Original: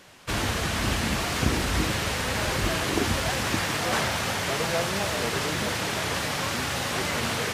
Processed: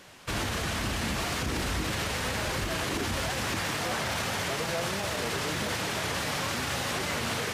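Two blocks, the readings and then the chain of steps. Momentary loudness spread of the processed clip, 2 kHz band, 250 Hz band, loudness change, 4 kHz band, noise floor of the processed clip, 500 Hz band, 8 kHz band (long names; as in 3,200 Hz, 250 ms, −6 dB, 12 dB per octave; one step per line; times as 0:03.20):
1 LU, −3.5 dB, −4.5 dB, −4.0 dB, −3.5 dB, −33 dBFS, −4.0 dB, −3.5 dB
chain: brickwall limiter −21.5 dBFS, peak gain reduction 11 dB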